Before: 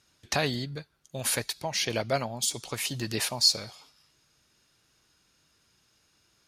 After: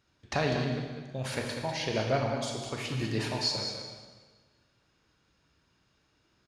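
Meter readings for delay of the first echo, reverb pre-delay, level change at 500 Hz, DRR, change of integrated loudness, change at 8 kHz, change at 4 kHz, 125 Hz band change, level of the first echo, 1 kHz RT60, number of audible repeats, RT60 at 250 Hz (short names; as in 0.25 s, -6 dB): 0.197 s, 26 ms, +1.0 dB, 0.5 dB, -3.5 dB, -12.0 dB, -6.0 dB, +3.0 dB, -8.5 dB, 1.4 s, 1, 1.5 s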